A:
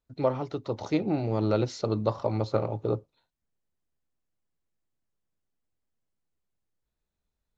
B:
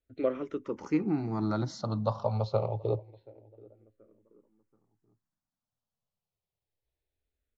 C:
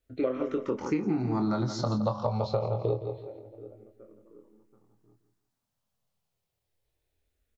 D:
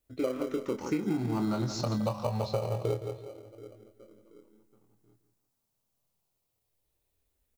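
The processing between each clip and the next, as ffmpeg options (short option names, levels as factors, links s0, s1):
-filter_complex "[0:a]highshelf=f=6400:g=-8,asplit=2[s0][s1];[s1]adelay=730,lowpass=f=1300:p=1,volume=0.0631,asplit=2[s2][s3];[s3]adelay=730,lowpass=f=1300:p=1,volume=0.48,asplit=2[s4][s5];[s5]adelay=730,lowpass=f=1300:p=1,volume=0.48[s6];[s0][s2][s4][s6]amix=inputs=4:normalize=0,asplit=2[s7][s8];[s8]afreqshift=-0.27[s9];[s7][s9]amix=inputs=2:normalize=1"
-filter_complex "[0:a]asplit=2[s0][s1];[s1]adelay=24,volume=0.501[s2];[s0][s2]amix=inputs=2:normalize=0,aecho=1:1:167|334|501:0.266|0.0745|0.0209,acompressor=threshold=0.0282:ratio=6,volume=2.11"
-filter_complex "[0:a]highshelf=f=5800:g=11.5,asplit=2[s0][s1];[s1]acrusher=samples=25:mix=1:aa=0.000001,volume=0.299[s2];[s0][s2]amix=inputs=2:normalize=0,volume=0.631"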